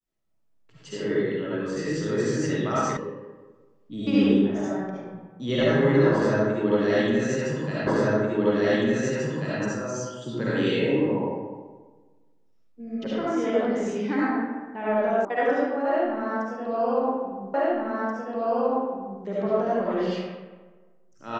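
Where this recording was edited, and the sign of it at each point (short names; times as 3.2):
2.97 sound cut off
7.87 repeat of the last 1.74 s
15.25 sound cut off
17.54 repeat of the last 1.68 s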